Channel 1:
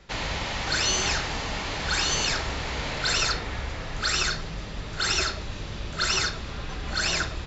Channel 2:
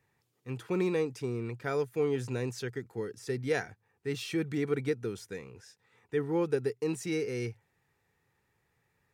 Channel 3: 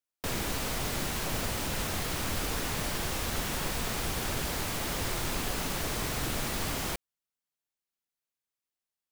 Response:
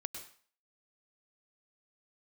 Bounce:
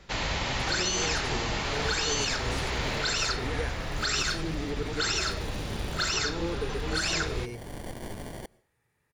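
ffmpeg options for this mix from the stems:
-filter_complex "[0:a]volume=0dB[link_01];[1:a]volume=2dB,asplit=3[link_02][link_03][link_04];[link_03]volume=-7.5dB[link_05];[2:a]acrusher=samples=34:mix=1:aa=0.000001,adelay=1500,volume=-1.5dB,asplit=2[link_06][link_07];[link_07]volume=-23.5dB[link_08];[link_04]apad=whole_len=467909[link_09];[link_06][link_09]sidechaincompress=threshold=-37dB:ratio=8:attack=16:release=544[link_10];[link_02][link_10]amix=inputs=2:normalize=0,aeval=exprs='(tanh(17.8*val(0)+0.75)-tanh(0.75))/17.8':channel_layout=same,alimiter=level_in=5.5dB:limit=-24dB:level=0:latency=1:release=92,volume=-5.5dB,volume=0dB[link_11];[3:a]atrim=start_sample=2205[link_12];[link_08][link_12]afir=irnorm=-1:irlink=0[link_13];[link_05]aecho=0:1:88:1[link_14];[link_01][link_11][link_13][link_14]amix=inputs=4:normalize=0,equalizer=frequency=9700:width=3.6:gain=7.5,alimiter=limit=-17.5dB:level=0:latency=1:release=155"

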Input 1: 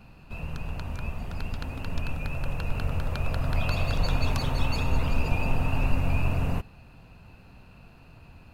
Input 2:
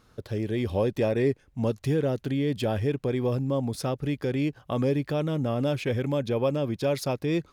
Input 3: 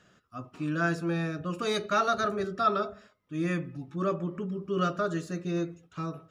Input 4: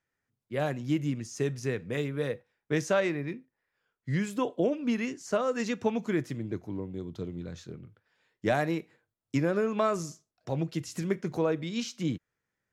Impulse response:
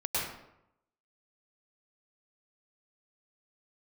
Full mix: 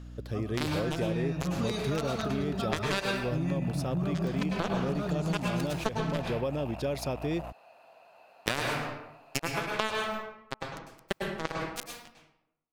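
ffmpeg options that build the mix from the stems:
-filter_complex "[0:a]acompressor=threshold=-24dB:ratio=6,asoftclip=type=tanh:threshold=-29.5dB,highpass=frequency=650:width_type=q:width=4.9,adelay=900,volume=-4.5dB[link_01];[1:a]aeval=exprs='val(0)+0.0112*(sin(2*PI*60*n/s)+sin(2*PI*2*60*n/s)/2+sin(2*PI*3*60*n/s)/3+sin(2*PI*4*60*n/s)/4+sin(2*PI*5*60*n/s)/5)':channel_layout=same,volume=-3.5dB[link_02];[2:a]asubboost=boost=7:cutoff=160,alimiter=limit=-23dB:level=0:latency=1,equalizer=frequency=1400:width_type=o:width=0.77:gain=-8,volume=-0.5dB,asplit=2[link_03][link_04];[link_04]volume=-10dB[link_05];[3:a]highshelf=frequency=2100:gain=10,bandreject=frequency=2100:width=10,acrusher=bits=2:mix=0:aa=0.5,volume=2.5dB,asplit=2[link_06][link_07];[link_07]volume=-3dB[link_08];[4:a]atrim=start_sample=2205[link_09];[link_05][link_08]amix=inputs=2:normalize=0[link_10];[link_10][link_09]afir=irnorm=-1:irlink=0[link_11];[link_01][link_02][link_03][link_06][link_11]amix=inputs=5:normalize=0,acompressor=threshold=-27dB:ratio=4"

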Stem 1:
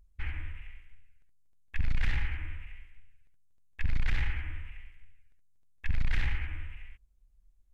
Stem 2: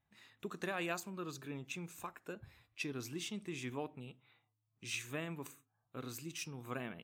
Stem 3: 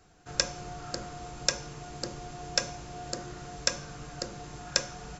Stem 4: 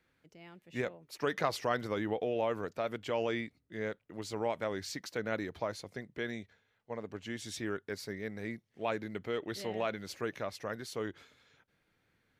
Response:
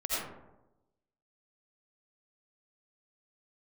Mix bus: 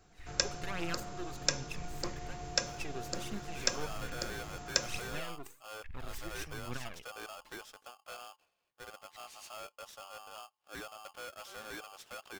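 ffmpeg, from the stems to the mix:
-filter_complex "[0:a]alimiter=level_in=2dB:limit=-24dB:level=0:latency=1,volume=-2dB,volume=-14.5dB[link_01];[1:a]aeval=exprs='max(val(0),0)':channel_layout=same,aphaser=in_gain=1:out_gain=1:delay=2.9:decay=0.57:speed=1.2:type=triangular,volume=0.5dB[link_02];[2:a]volume=-3.5dB[link_03];[3:a]asoftclip=type=tanh:threshold=-31.5dB,aeval=exprs='val(0)*sgn(sin(2*PI*970*n/s))':channel_layout=same,adelay=1900,volume=-7.5dB,afade=type=in:start_time=3.47:duration=0.42:silence=0.281838[link_04];[link_01][link_02][link_03][link_04]amix=inputs=4:normalize=0"

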